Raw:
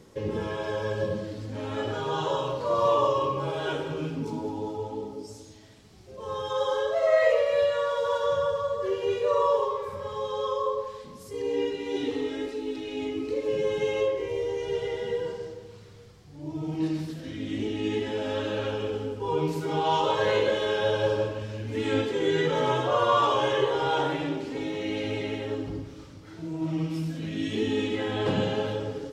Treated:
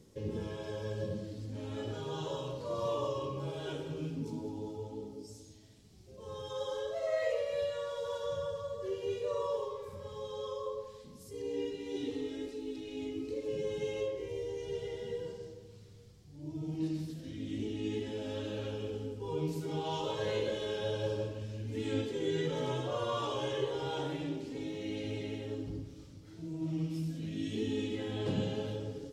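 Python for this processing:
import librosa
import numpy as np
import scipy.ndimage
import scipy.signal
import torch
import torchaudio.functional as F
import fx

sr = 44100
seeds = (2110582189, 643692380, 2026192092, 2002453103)

y = fx.peak_eq(x, sr, hz=1200.0, db=-11.5, octaves=2.6)
y = F.gain(torch.from_numpy(y), -4.0).numpy()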